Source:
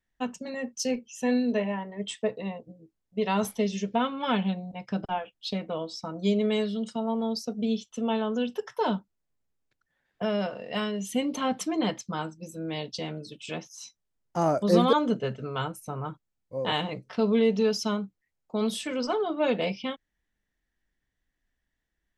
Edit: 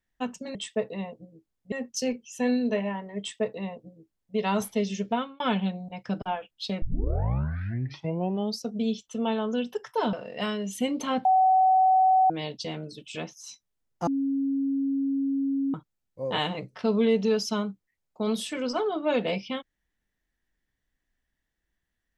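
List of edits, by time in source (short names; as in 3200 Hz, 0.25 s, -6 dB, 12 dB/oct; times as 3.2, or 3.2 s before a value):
2.02–3.19 copy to 0.55
3.94–4.23 fade out
5.65 tape start 1.76 s
8.96–10.47 cut
11.59–12.64 bleep 754 Hz -16.5 dBFS
14.41–16.08 bleep 274 Hz -23.5 dBFS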